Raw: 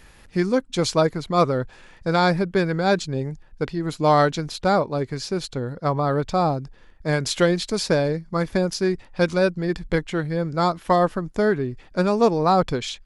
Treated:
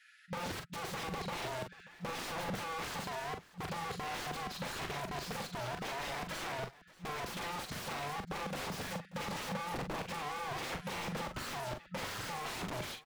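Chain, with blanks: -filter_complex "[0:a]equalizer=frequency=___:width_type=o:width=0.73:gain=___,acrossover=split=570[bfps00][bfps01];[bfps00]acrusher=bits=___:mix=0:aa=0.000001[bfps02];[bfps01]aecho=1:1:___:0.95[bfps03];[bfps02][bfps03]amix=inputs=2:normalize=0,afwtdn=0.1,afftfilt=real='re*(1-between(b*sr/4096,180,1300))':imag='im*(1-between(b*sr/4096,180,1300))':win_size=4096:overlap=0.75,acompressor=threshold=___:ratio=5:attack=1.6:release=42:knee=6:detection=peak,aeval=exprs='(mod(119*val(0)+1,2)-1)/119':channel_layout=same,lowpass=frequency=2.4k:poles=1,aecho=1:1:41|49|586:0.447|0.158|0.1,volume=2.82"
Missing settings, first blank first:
400, 14.5, 4, 7, 0.0126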